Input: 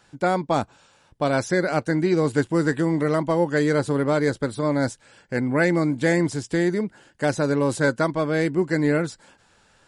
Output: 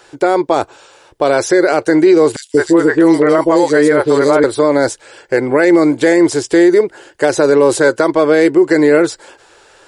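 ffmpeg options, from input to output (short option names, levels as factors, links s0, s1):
-filter_complex "[0:a]lowshelf=f=280:t=q:w=3:g=-9,asettb=1/sr,asplit=3[s0][s1][s2];[s0]atrim=end=2.364[s3];[s1]atrim=start=2.36:end=4.44,asetpts=PTS-STARTPTS,afade=t=in:d=0.004:c=qsin,afade=t=out:st=2.076:d=0.004:c=qsin,acrossover=split=510|3100[s4][s5][s6];[s4]adelay=180[s7];[s5]adelay=210[s8];[s7][s8][s6]amix=inputs=3:normalize=0,atrim=end_sample=91728[s9];[s2]atrim=start=4.436[s10];[s3][s9]acrossfade=d=0.004:c1=hsin:c2=qsin[s11];[s11][s10]acrossfade=d=0.004:c1=qsin:c2=hsin,alimiter=level_in=5.01:limit=0.891:release=50:level=0:latency=1,volume=0.891"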